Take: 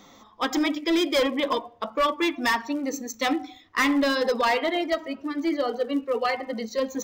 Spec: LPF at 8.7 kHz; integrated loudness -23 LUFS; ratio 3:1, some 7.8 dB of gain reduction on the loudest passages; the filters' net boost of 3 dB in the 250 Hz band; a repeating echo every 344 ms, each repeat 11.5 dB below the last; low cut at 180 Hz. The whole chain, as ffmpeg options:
-af "highpass=180,lowpass=8700,equalizer=f=250:t=o:g=4.5,acompressor=threshold=0.0398:ratio=3,aecho=1:1:344|688|1032:0.266|0.0718|0.0194,volume=2.24"

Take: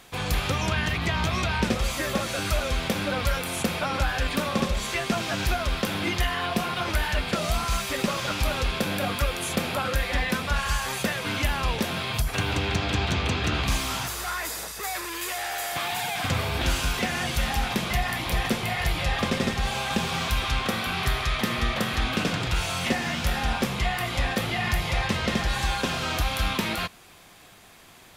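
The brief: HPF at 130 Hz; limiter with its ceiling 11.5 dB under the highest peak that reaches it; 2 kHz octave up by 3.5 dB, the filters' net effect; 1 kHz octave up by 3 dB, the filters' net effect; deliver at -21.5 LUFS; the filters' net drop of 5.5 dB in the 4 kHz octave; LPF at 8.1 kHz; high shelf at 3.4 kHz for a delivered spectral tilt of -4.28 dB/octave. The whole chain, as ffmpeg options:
-af "highpass=130,lowpass=8100,equalizer=f=1000:t=o:g=3,equalizer=f=2000:t=o:g=7,highshelf=f=3400:g=-6.5,equalizer=f=4000:t=o:g=-6,volume=2.51,alimiter=limit=0.211:level=0:latency=1"

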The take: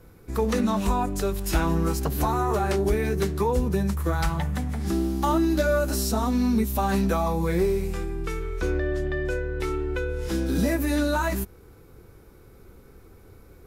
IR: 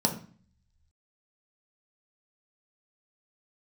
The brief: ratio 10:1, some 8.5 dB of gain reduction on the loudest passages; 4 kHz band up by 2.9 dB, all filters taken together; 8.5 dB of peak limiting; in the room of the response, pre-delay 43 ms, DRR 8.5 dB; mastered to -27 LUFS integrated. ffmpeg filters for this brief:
-filter_complex "[0:a]equalizer=f=4000:t=o:g=3.5,acompressor=threshold=0.0501:ratio=10,alimiter=level_in=1.12:limit=0.0631:level=0:latency=1,volume=0.891,asplit=2[s0][s1];[1:a]atrim=start_sample=2205,adelay=43[s2];[s1][s2]afir=irnorm=-1:irlink=0,volume=0.126[s3];[s0][s3]amix=inputs=2:normalize=0,volume=1.78"

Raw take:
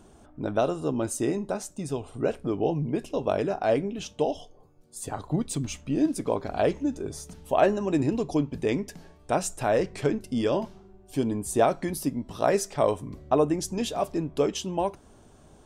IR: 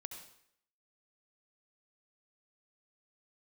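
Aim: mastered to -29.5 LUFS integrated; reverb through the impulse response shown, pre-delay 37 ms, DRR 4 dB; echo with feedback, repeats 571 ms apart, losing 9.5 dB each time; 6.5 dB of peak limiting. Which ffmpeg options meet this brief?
-filter_complex "[0:a]alimiter=limit=0.168:level=0:latency=1,aecho=1:1:571|1142|1713|2284:0.335|0.111|0.0365|0.012,asplit=2[s0][s1];[1:a]atrim=start_sample=2205,adelay=37[s2];[s1][s2]afir=irnorm=-1:irlink=0,volume=0.944[s3];[s0][s3]amix=inputs=2:normalize=0,volume=0.794"

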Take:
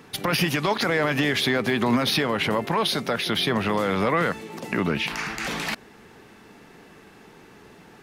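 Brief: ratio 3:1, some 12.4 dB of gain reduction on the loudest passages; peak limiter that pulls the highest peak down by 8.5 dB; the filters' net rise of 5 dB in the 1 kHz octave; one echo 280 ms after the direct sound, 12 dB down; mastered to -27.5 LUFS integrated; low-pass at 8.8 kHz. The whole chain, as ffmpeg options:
-af "lowpass=8800,equalizer=f=1000:t=o:g=6,acompressor=threshold=0.0224:ratio=3,alimiter=limit=0.0631:level=0:latency=1,aecho=1:1:280:0.251,volume=2.11"

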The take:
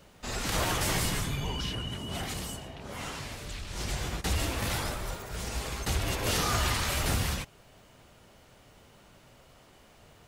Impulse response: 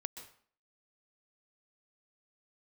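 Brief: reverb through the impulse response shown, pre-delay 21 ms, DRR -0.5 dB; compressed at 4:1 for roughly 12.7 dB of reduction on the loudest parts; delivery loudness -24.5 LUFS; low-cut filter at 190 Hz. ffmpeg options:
-filter_complex "[0:a]highpass=190,acompressor=threshold=0.00794:ratio=4,asplit=2[s0][s1];[1:a]atrim=start_sample=2205,adelay=21[s2];[s1][s2]afir=irnorm=-1:irlink=0,volume=1.33[s3];[s0][s3]amix=inputs=2:normalize=0,volume=5.62"

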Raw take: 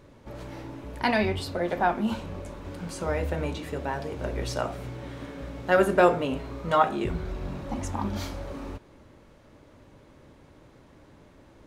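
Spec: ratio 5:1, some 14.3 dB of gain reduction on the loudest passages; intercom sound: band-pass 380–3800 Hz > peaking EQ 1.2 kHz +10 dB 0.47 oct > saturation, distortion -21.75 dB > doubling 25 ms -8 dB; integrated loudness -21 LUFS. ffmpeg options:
-filter_complex "[0:a]acompressor=threshold=0.0282:ratio=5,highpass=380,lowpass=3800,equalizer=f=1200:t=o:w=0.47:g=10,asoftclip=threshold=0.112,asplit=2[s0][s1];[s1]adelay=25,volume=0.398[s2];[s0][s2]amix=inputs=2:normalize=0,volume=6.31"

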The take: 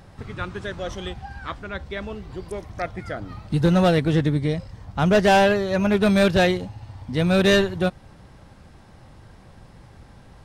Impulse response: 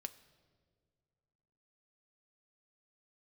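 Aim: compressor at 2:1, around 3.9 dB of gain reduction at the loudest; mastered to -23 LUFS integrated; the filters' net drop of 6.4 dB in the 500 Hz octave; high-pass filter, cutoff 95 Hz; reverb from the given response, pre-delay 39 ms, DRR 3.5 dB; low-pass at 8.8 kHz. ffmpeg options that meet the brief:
-filter_complex "[0:a]highpass=95,lowpass=8800,equalizer=f=500:t=o:g=-8.5,acompressor=threshold=0.0708:ratio=2,asplit=2[s0][s1];[1:a]atrim=start_sample=2205,adelay=39[s2];[s1][s2]afir=irnorm=-1:irlink=0,volume=1[s3];[s0][s3]amix=inputs=2:normalize=0,volume=1.41"

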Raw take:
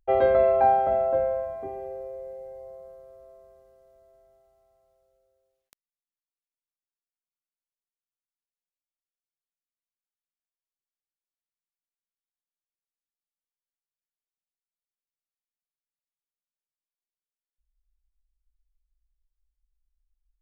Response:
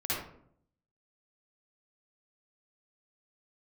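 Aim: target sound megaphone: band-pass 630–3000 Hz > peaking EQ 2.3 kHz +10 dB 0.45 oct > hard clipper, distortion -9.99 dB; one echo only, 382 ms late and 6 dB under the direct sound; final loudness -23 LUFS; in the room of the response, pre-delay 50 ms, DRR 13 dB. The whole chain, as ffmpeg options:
-filter_complex "[0:a]aecho=1:1:382:0.501,asplit=2[s0][s1];[1:a]atrim=start_sample=2205,adelay=50[s2];[s1][s2]afir=irnorm=-1:irlink=0,volume=0.106[s3];[s0][s3]amix=inputs=2:normalize=0,highpass=630,lowpass=3000,equalizer=f=2300:t=o:w=0.45:g=10,asoftclip=type=hard:threshold=0.0708,volume=1.88"

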